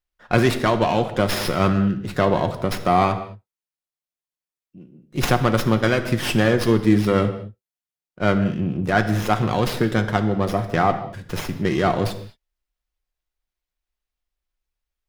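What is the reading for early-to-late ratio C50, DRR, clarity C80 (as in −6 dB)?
11.0 dB, 6.5 dB, 13.0 dB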